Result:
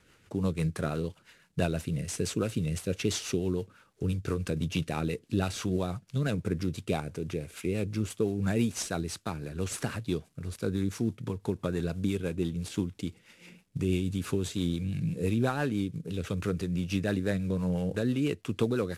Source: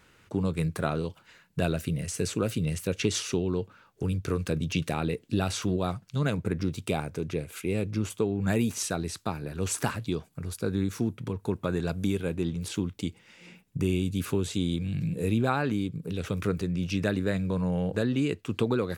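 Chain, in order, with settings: CVSD 64 kbps; rotary speaker horn 6 Hz

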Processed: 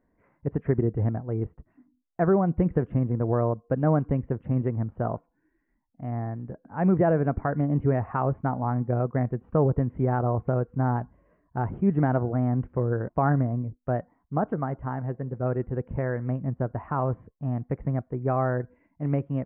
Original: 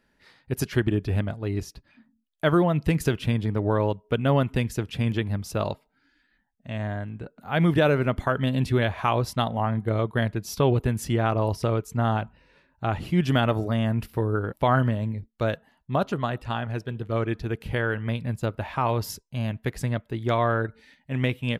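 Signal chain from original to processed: Gaussian blur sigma 7.2 samples; varispeed +11%

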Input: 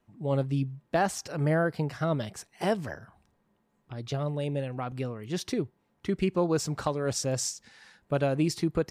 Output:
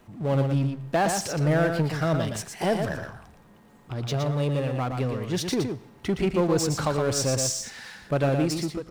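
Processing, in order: ending faded out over 0.61 s; power-law curve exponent 0.7; echo 0.117 s -6 dB; digital reverb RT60 0.73 s, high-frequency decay 0.95×, pre-delay 45 ms, DRR 19 dB

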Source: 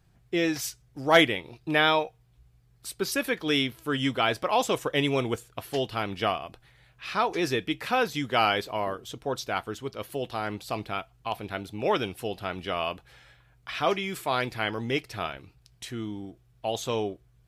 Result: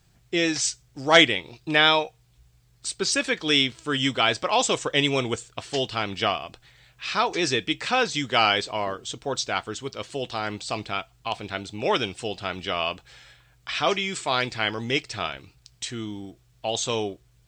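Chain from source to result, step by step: elliptic low-pass 8100 Hz, stop band 40 dB; high shelf 3400 Hz +11 dB; requantised 12-bit, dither none; gain +2 dB

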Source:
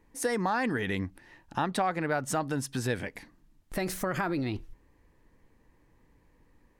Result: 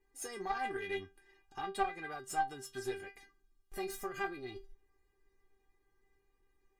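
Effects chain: metallic resonator 390 Hz, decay 0.23 s, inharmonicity 0.002; tube stage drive 32 dB, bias 0.75; gain +10 dB

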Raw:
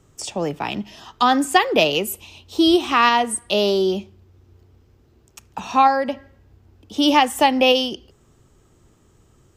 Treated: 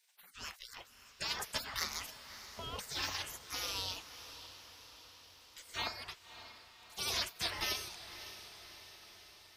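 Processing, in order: 2.1–2.79 LPF 1600 Hz 24 dB/oct; spectral gate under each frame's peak -30 dB weak; diffused feedback echo 0.587 s, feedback 60%, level -12.5 dB

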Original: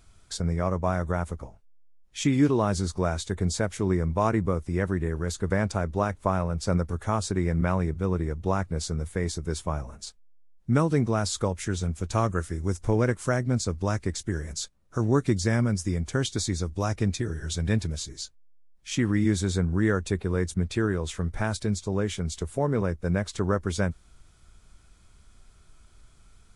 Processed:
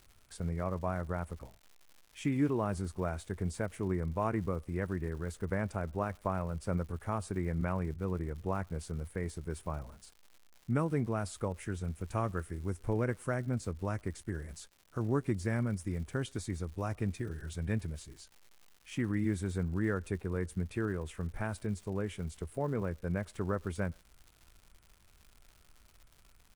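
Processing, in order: band shelf 5000 Hz -10 dB 1.3 oct; crackle 220/s -39 dBFS; speakerphone echo 0.11 s, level -30 dB; gain -8.5 dB

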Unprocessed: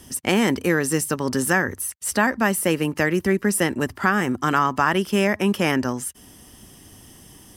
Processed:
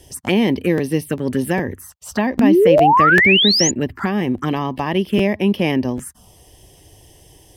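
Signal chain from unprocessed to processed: 1.8–4.01 bell 10000 Hz -12 dB 0.52 oct; envelope phaser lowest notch 200 Hz, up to 1400 Hz, full sweep at -18.5 dBFS; 2.38–3.71 painted sound rise 220–7100 Hz -16 dBFS; high shelf 4500 Hz -8.5 dB; crackling interface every 0.40 s, samples 512, repeat, from 0.77; gain +4.5 dB

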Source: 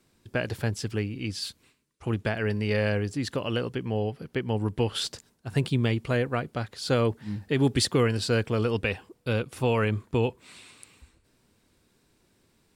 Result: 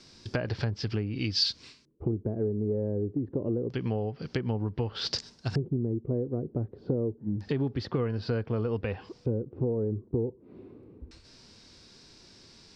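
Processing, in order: treble ducked by the level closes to 1300 Hz, closed at -24 dBFS; harmonic-percussive split harmonic +5 dB; LFO low-pass square 0.27 Hz 380–5200 Hz; compressor 6:1, threshold -33 dBFS, peak gain reduction 18.5 dB; bell 5100 Hz +6.5 dB 0.75 oct; gain +5.5 dB

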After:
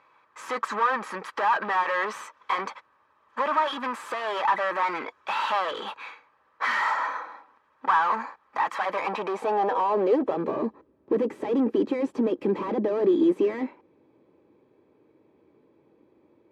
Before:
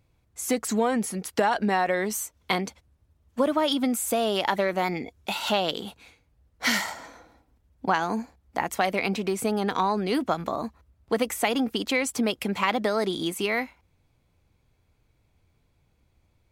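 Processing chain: overdrive pedal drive 33 dB, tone 3200 Hz, clips at -8.5 dBFS; notch comb 710 Hz; band-pass sweep 1200 Hz -> 340 Hz, 8.75–10.73

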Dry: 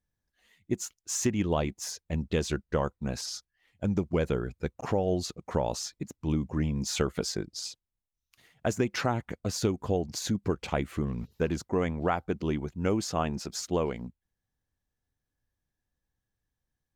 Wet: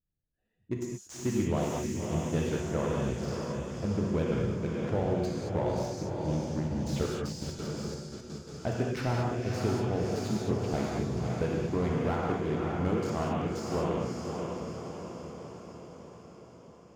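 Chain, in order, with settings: Wiener smoothing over 41 samples; on a send: diffused feedback echo 0.578 s, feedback 60%, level -5 dB; 6.67–8.93 on the sum: step gate "..x.x.xxxx" 170 bpm; non-linear reverb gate 0.25 s flat, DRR -0.5 dB; slew limiter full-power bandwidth 62 Hz; gain -4 dB

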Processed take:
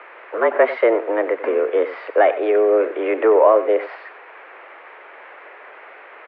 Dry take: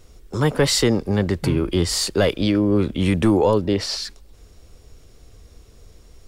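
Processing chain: requantised 6-bit, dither triangular; mistuned SSB +110 Hz 280–2100 Hz; echo 93 ms -14 dB; gain +5 dB

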